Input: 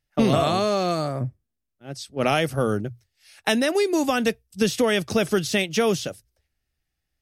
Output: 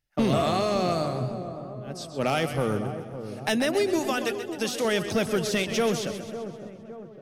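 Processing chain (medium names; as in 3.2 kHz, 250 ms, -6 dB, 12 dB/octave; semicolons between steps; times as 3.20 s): 3.99–4.85 s: high-pass 550 Hz 6 dB/octave; in parallel at -5 dB: wavefolder -15.5 dBFS; on the sum: feedback echo behind a low-pass 558 ms, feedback 50%, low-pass 950 Hz, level -10 dB; modulated delay 130 ms, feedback 57%, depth 93 cents, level -10.5 dB; trim -7 dB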